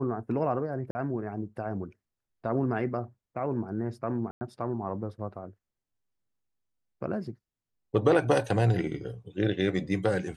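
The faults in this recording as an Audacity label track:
0.910000	0.950000	gap 40 ms
4.310000	4.410000	gap 0.1 s

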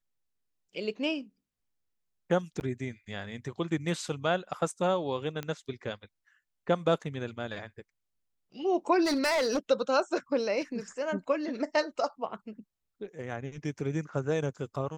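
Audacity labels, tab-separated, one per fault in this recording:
2.600000	2.610000	gap 9.4 ms
5.430000	5.430000	pop -21 dBFS
9.040000	9.590000	clipped -24 dBFS

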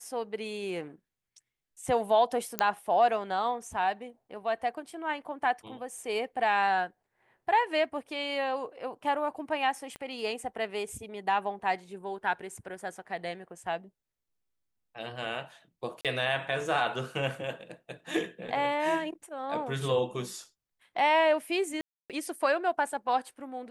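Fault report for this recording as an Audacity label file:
2.590000	2.590000	pop -9 dBFS
9.960000	9.960000	pop -25 dBFS
16.010000	16.050000	gap 37 ms
21.810000	22.100000	gap 0.287 s

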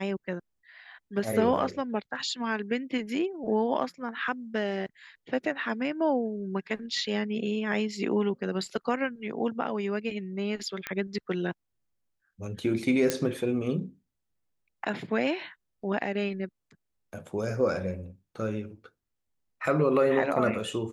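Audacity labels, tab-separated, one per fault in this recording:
10.870000	10.870000	pop -16 dBFS
13.100000	13.100000	pop -10 dBFS

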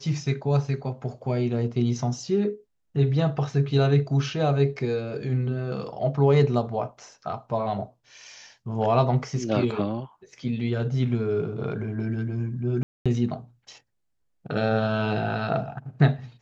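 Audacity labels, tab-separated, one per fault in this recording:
12.830000	13.060000	gap 0.226 s

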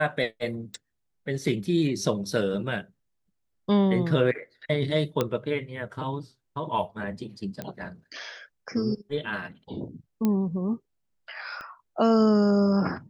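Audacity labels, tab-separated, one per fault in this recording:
0.740000	0.740000	pop
5.210000	5.210000	pop -11 dBFS
7.620000	7.620000	pop -19 dBFS
10.250000	10.250000	pop -13 dBFS
11.610000	11.610000	pop -26 dBFS

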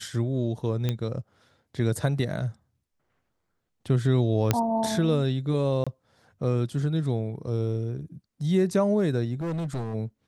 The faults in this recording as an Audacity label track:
0.890000	0.890000	pop -14 dBFS
4.510000	4.510000	pop -6 dBFS
5.840000	5.870000	gap 26 ms
9.410000	9.950000	clipped -27 dBFS

